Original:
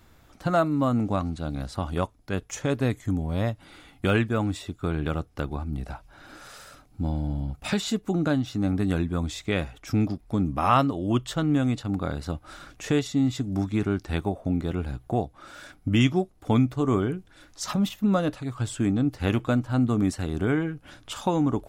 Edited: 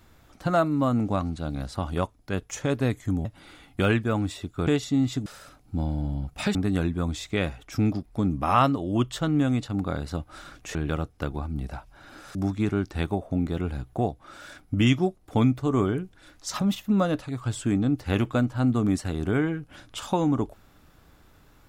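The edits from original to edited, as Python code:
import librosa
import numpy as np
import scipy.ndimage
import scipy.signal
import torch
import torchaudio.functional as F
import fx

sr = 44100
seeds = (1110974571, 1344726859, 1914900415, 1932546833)

y = fx.edit(x, sr, fx.cut(start_s=3.25, length_s=0.25),
    fx.swap(start_s=4.92, length_s=1.6, other_s=12.9, other_length_s=0.59),
    fx.cut(start_s=7.81, length_s=0.89), tone=tone)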